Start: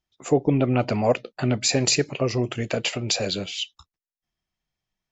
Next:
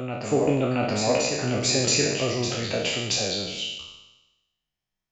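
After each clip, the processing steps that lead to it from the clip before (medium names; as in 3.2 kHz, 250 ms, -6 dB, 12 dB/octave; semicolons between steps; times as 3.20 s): spectral sustain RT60 1.03 s; reverse echo 676 ms -6.5 dB; trim -5 dB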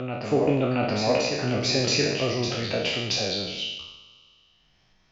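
steep low-pass 5.9 kHz 48 dB/octave; upward compressor, threshold -43 dBFS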